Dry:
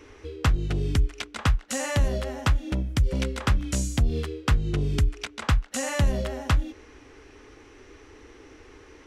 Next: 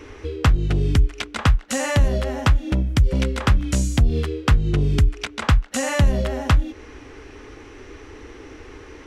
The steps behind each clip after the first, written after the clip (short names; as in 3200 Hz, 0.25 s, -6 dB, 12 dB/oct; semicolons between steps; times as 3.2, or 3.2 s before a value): tone controls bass +2 dB, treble -3 dB; in parallel at 0 dB: compressor, threshold -30 dBFS, peak gain reduction 15 dB; on the sum: gain +2 dB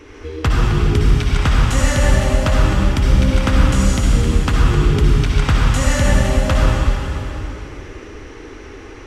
reverb RT60 3.2 s, pre-delay 50 ms, DRR -5 dB; gain -1 dB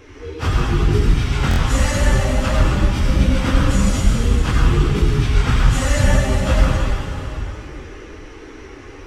phase scrambler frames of 0.1 s; stuck buffer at 1.49, samples 1024, times 3; gain -1.5 dB